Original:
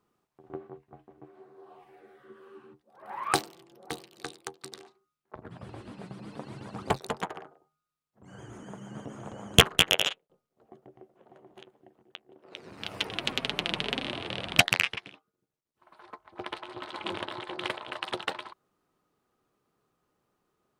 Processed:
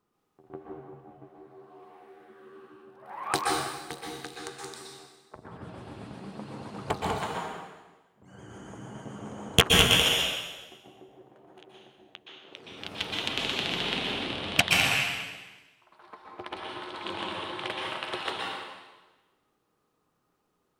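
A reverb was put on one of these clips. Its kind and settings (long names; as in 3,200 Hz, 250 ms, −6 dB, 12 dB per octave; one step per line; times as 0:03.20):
dense smooth reverb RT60 1.2 s, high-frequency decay 1×, pre-delay 110 ms, DRR −2.5 dB
level −2.5 dB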